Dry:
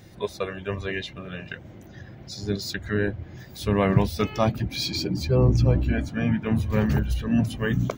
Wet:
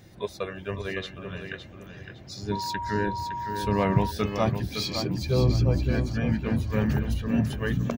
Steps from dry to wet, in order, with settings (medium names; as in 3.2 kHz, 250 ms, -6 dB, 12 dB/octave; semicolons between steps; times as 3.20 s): feedback delay 561 ms, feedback 31%, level -8 dB; 2.51–4.10 s: whistle 950 Hz -27 dBFS; trim -3 dB